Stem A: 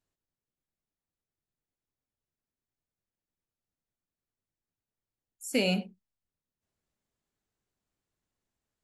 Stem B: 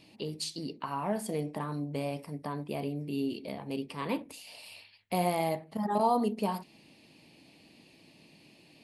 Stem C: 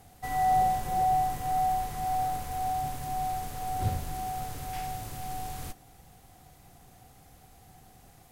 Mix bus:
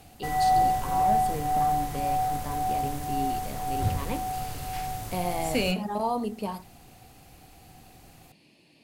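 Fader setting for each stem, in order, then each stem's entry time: +0.5 dB, -1.5 dB, +2.5 dB; 0.00 s, 0.00 s, 0.00 s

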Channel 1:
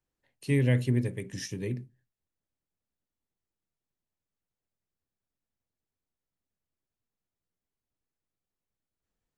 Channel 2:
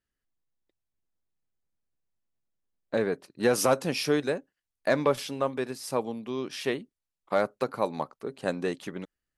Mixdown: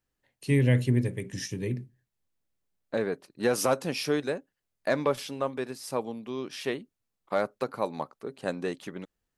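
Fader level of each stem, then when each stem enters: +2.0 dB, -2.0 dB; 0.00 s, 0.00 s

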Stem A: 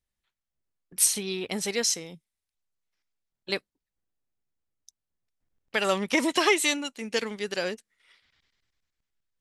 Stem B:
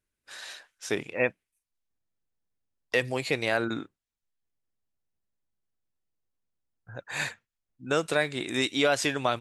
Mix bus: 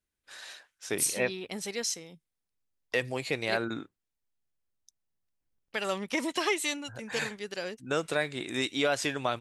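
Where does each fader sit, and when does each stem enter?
-6.5 dB, -3.5 dB; 0.00 s, 0.00 s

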